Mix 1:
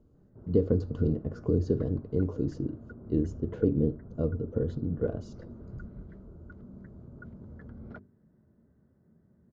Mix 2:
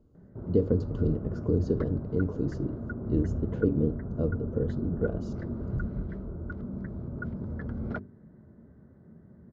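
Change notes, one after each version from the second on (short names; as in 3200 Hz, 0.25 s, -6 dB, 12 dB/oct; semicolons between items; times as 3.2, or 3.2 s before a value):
background +11.0 dB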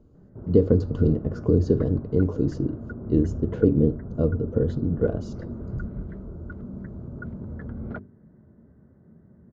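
speech +6.5 dB; background: add air absorption 220 m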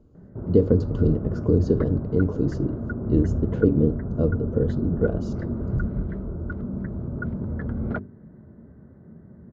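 background +6.5 dB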